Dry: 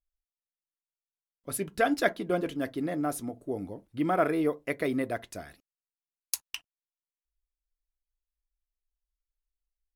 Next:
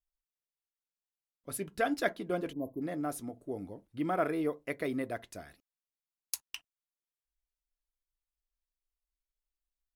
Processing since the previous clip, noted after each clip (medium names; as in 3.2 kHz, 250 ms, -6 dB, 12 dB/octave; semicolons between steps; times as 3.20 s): spectral selection erased 2.52–2.81 s, 1.1–11 kHz; trim -5 dB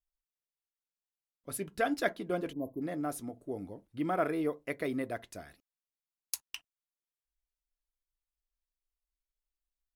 no audible change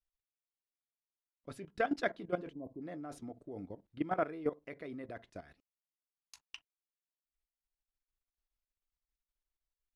level held to a coarse grid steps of 15 dB; distance through air 100 m; trim +1.5 dB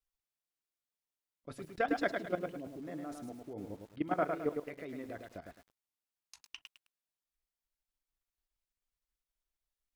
wow and flutter 26 cents; bit-crushed delay 106 ms, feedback 35%, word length 10-bit, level -4.5 dB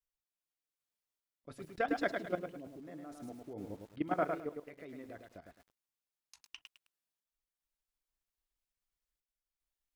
random-step tremolo 2.5 Hz